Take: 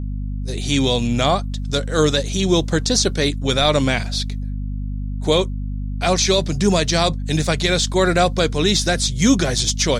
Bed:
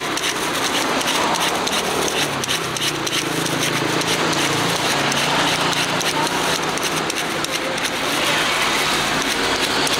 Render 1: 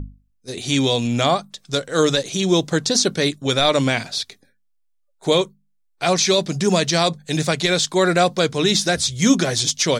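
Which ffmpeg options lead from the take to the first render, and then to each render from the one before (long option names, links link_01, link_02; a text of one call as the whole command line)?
ffmpeg -i in.wav -af "bandreject=frequency=50:width_type=h:width=6,bandreject=frequency=100:width_type=h:width=6,bandreject=frequency=150:width_type=h:width=6,bandreject=frequency=200:width_type=h:width=6,bandreject=frequency=250:width_type=h:width=6" out.wav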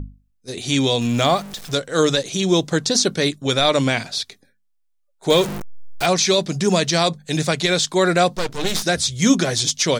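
ffmpeg -i in.wav -filter_complex "[0:a]asettb=1/sr,asplit=3[link_01][link_02][link_03];[link_01]atrim=end=1.014[link_04];[link_02]atrim=start=1.01:end=1.74,asetpts=PTS-STARTPTS,afade=type=in:duration=0.004:curve=qsin,afade=type=out:start_time=0.726:duration=0.004:curve=qsin,aeval=exprs='val(0)+0.5*0.0282*sgn(val(0))':channel_layout=same[link_05];[link_03]atrim=start=1.736[link_06];[link_04][link_05]acrossfade=duration=0.004:curve1=hsin:curve2=qsin[link_07];[link_07][link_06]acrossfade=duration=0.004:curve1=qsin:curve2=hsin,asettb=1/sr,asplit=3[link_08][link_09][link_10];[link_08]atrim=end=5.304[link_11];[link_09]atrim=start=5.3:end=6.06,asetpts=PTS-STARTPTS,afade=type=in:duration=0.004:curve=qsin,afade=type=out:start_time=0.756:duration=0.004:curve=qsin,aeval=exprs='val(0)+0.5*0.0841*sgn(val(0))':channel_layout=same[link_12];[link_10]atrim=start=6.056[link_13];[link_11][link_12]acrossfade=duration=0.004:curve1=hsin:curve2=qsin[link_14];[link_14][link_13]acrossfade=duration=0.004:curve1=qsin:curve2=hsin,asplit=3[link_15][link_16][link_17];[link_15]afade=type=out:start_time=8.35:duration=0.02[link_18];[link_16]aeval=exprs='max(val(0),0)':channel_layout=same,afade=type=in:start_time=8.35:duration=0.02,afade=type=out:start_time=8.82:duration=0.02[link_19];[link_17]afade=type=in:start_time=8.82:duration=0.02[link_20];[link_18][link_19][link_20]amix=inputs=3:normalize=0" out.wav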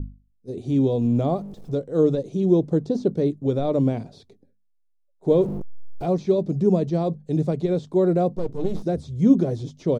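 ffmpeg -i in.wav -filter_complex "[0:a]acrossover=split=4100[link_01][link_02];[link_02]acompressor=threshold=-29dB:ratio=4:attack=1:release=60[link_03];[link_01][link_03]amix=inputs=2:normalize=0,firequalizer=gain_entry='entry(430,0);entry(640,-7);entry(1600,-26)':delay=0.05:min_phase=1" out.wav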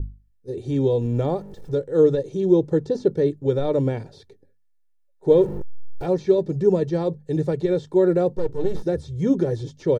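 ffmpeg -i in.wav -af "equalizer=frequency=1700:width_type=o:width=0.23:gain=11,aecho=1:1:2.2:0.58" out.wav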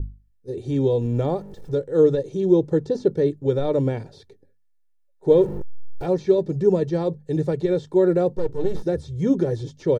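ffmpeg -i in.wav -af anull out.wav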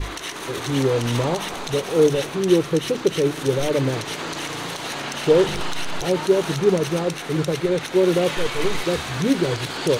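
ffmpeg -i in.wav -i bed.wav -filter_complex "[1:a]volume=-10.5dB[link_01];[0:a][link_01]amix=inputs=2:normalize=0" out.wav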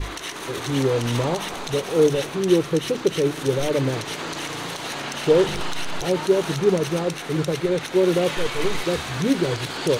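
ffmpeg -i in.wav -af "volume=-1dB" out.wav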